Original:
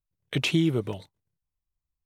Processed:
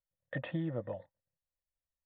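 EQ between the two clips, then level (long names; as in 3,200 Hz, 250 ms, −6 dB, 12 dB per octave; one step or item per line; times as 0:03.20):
formant resonators in series e
low-shelf EQ 210 Hz −6.5 dB
phaser with its sweep stopped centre 980 Hz, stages 4
+14.5 dB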